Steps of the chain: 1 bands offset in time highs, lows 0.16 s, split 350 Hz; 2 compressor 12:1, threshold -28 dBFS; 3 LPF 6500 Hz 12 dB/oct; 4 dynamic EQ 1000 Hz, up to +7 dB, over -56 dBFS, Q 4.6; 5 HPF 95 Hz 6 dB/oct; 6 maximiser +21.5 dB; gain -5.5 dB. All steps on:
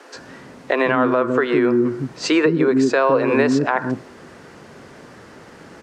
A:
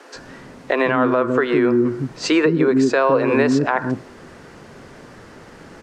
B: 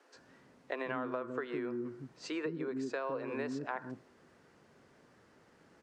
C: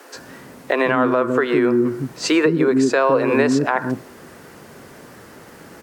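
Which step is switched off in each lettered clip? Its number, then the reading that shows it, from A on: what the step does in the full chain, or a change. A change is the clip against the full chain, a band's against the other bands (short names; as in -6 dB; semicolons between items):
5, 125 Hz band +1.5 dB; 6, crest factor change +4.0 dB; 3, 8 kHz band +3.5 dB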